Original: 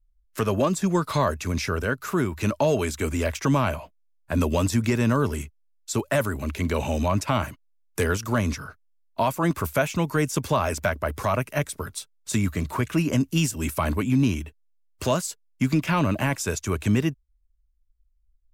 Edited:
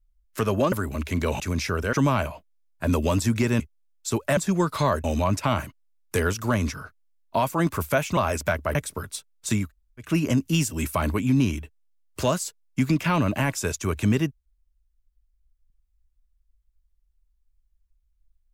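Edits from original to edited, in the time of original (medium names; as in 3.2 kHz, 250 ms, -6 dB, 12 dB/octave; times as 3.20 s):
0.72–1.39 s: swap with 6.20–6.88 s
1.92–3.41 s: delete
5.08–5.43 s: delete
10.01–10.54 s: delete
11.12–11.58 s: delete
12.47–12.88 s: room tone, crossfade 0.16 s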